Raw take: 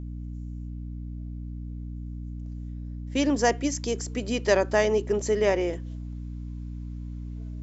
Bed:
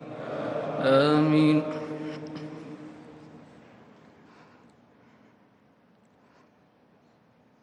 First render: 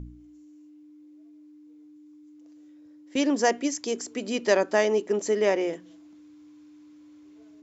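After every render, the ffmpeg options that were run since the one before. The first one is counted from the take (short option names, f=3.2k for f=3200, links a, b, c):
-af "bandreject=f=60:t=h:w=4,bandreject=f=120:t=h:w=4,bandreject=f=180:t=h:w=4,bandreject=f=240:t=h:w=4"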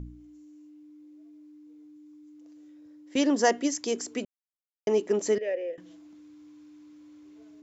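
-filter_complex "[0:a]asettb=1/sr,asplit=3[a][b][c];[a]atrim=end=3.184[d];[b]atrim=start=3.18:end=3.74,asetpts=PTS-STARTPTS,afade=t=in:d=0.004:c=qsin,afade=t=out:st=0.556:d=0.004:c=qsin,bandreject=f=2.4k:w=9.7[e];[c]atrim=start=3.736[f];[d][e]acrossfade=d=0.004:c1=hsin:c2=qsin[g];[g][f]acrossfade=d=0.004:c1=qsin:c2=hsin,asettb=1/sr,asplit=3[h][i][j];[h]atrim=end=5.384[k];[i]atrim=start=5.38:end=5.78,asetpts=PTS-STARTPTS,afade=t=in:d=0.004:c=qsin,afade=t=out:st=0.396:d=0.004:c=qsin,asplit=3[l][m][n];[l]bandpass=f=530:t=q:w=8,volume=0dB[o];[m]bandpass=f=1.84k:t=q:w=8,volume=-6dB[p];[n]bandpass=f=2.48k:t=q:w=8,volume=-9dB[q];[o][p][q]amix=inputs=3:normalize=0[r];[j]atrim=start=5.776[s];[k][r]acrossfade=d=0.004:c1=hsin:c2=qsin[t];[t][s]acrossfade=d=0.004:c1=qsin:c2=hsin,asplit=3[u][v][w];[u]atrim=end=4.25,asetpts=PTS-STARTPTS,afade=t=out:st=4.246:d=0.004:c=hsin[x];[v]atrim=start=4.25:end=4.87,asetpts=PTS-STARTPTS,volume=0[y];[w]atrim=start=4.87,asetpts=PTS-STARTPTS,afade=t=in:d=0.004:c=hsin[z];[x][y][z]concat=n=3:v=0:a=1"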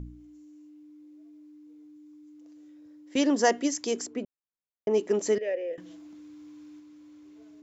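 -filter_complex "[0:a]asplit=3[a][b][c];[a]afade=t=out:st=4.06:d=0.02[d];[b]lowpass=f=1k:p=1,afade=t=in:st=4.06:d=0.02,afade=t=out:st=4.93:d=0.02[e];[c]afade=t=in:st=4.93:d=0.02[f];[d][e][f]amix=inputs=3:normalize=0,asplit=3[g][h][i];[g]atrim=end=5.712[j];[h]atrim=start=5.708:end=6.802,asetpts=PTS-STARTPTS,volume=3.5dB[k];[i]atrim=start=6.798[l];[j][k]acrossfade=d=0.004:c1=hsin:c2=hsin[m];[m][l]acrossfade=d=0.004:c1=hsin:c2=hsin"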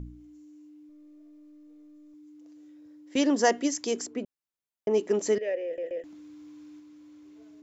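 -filter_complex "[0:a]asettb=1/sr,asplit=3[a][b][c];[a]atrim=end=0.894[d];[b]atrim=start=0.89:end=2.14,asetpts=PTS-STARTPTS,afade=t=in:d=0.004:c=qsin,afade=t=out:st=1.246:d=0.004:c=qsin,aeval=exprs='if(lt(val(0),0),0.708*val(0),val(0))':c=same[e];[c]atrim=start=2.136[f];[d][e]acrossfade=d=0.004:c1=hsin:c2=qsin[g];[g][f]acrossfade=d=0.004:c1=qsin:c2=hsin,asplit=4[h][i][j][k];[h]atrim=end=5.782[l];[i]atrim=start=5.648:end=5.782[m];[j]atrim=start=5.648:end=5.782[n];[k]atrim=start=6.038[o];[l][m]acrossfade=d=0.004:c1=hsin:c2=hsin[p];[p][n]acrossfade=d=0.004:c1=hsin:c2=hsin[q];[q][o]acrossfade=d=0.004:c1=hsin:c2=hsin"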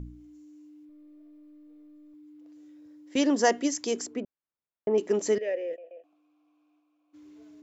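-filter_complex "[0:a]asettb=1/sr,asplit=3[a][b][c];[a]atrim=end=0.854[d];[b]atrim=start=0.85:end=2.53,asetpts=PTS-STARTPTS,afade=t=in:d=0.004:c=qsin,afade=t=out:st=1.676:d=0.004:c=qsin,equalizer=f=6.4k:t=o:w=0.77:g=-11.5[e];[c]atrim=start=2.526[f];[d][e]acrossfade=d=0.004:c1=hsin:c2=qsin[g];[g][f]acrossfade=d=0.004:c1=qsin:c2=hsin,asettb=1/sr,asplit=3[h][i][j];[h]atrim=end=4.204[k];[i]atrim=start=4.2:end=4.98,asetpts=PTS-STARTPTS,afade=t=in:d=0.004:c=qsin,afade=t=out:st=0.776:d=0.004:c=qsin,lowpass=1.9k[l];[j]atrim=start=4.976[m];[k][l]acrossfade=d=0.004:c1=hsin:c2=qsin[n];[n][m]acrossfade=d=0.004:c1=qsin:c2=hsin,asplit=3[o][p][q];[o]afade=t=out:st=5.75:d=0.02[r];[p]asplit=3[s][t][u];[s]bandpass=f=730:t=q:w=8,volume=0dB[v];[t]bandpass=f=1.09k:t=q:w=8,volume=-6dB[w];[u]bandpass=f=2.44k:t=q:w=8,volume=-9dB[x];[v][w][x]amix=inputs=3:normalize=0,afade=t=in:st=5.75:d=0.02,afade=t=out:st=7.13:d=0.02[y];[q]afade=t=in:st=7.13:d=0.02[z];[r][y][z]amix=inputs=3:normalize=0"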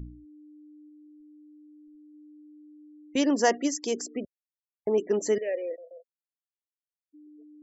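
-af "afftfilt=real='re*gte(hypot(re,im),0.00794)':imag='im*gte(hypot(re,im),0.00794)':win_size=1024:overlap=0.75"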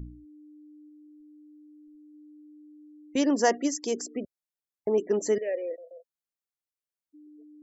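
-af "equalizer=f=2.9k:t=o:w=1:g=-3.5"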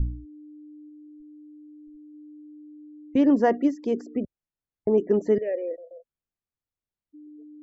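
-filter_complex "[0:a]aemphasis=mode=reproduction:type=riaa,acrossover=split=3500[a][b];[b]acompressor=threshold=-59dB:ratio=4:attack=1:release=60[c];[a][c]amix=inputs=2:normalize=0"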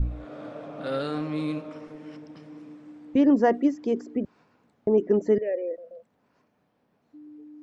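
-filter_complex "[1:a]volume=-9dB[a];[0:a][a]amix=inputs=2:normalize=0"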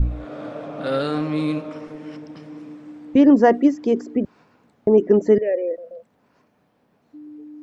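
-af "volume=6.5dB"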